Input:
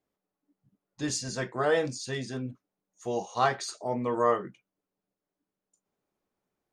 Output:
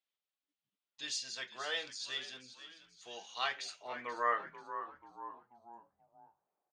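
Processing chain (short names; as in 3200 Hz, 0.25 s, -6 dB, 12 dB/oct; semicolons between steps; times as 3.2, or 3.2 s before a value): frequency-shifting echo 0.485 s, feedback 41%, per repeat -82 Hz, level -13 dB; band-pass sweep 3300 Hz -> 800 Hz, 3.29–5.66; gain +4 dB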